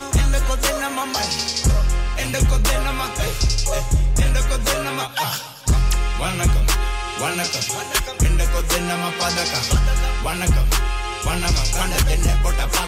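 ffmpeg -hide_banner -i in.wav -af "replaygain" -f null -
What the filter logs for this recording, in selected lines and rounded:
track_gain = +3.6 dB
track_peak = 0.305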